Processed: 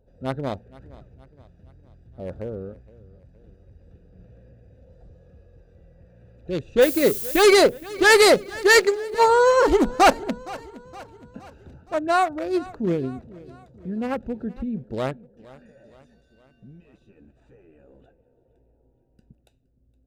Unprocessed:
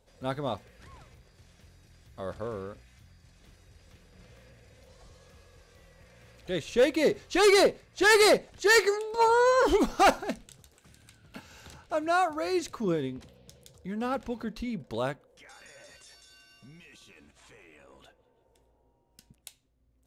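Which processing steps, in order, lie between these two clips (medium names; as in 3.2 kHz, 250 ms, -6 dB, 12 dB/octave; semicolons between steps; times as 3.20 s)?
local Wiener filter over 41 samples; 6.81–7.42 s: added noise violet -37 dBFS; feedback delay 467 ms, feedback 51%, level -20.5 dB; trim +6.5 dB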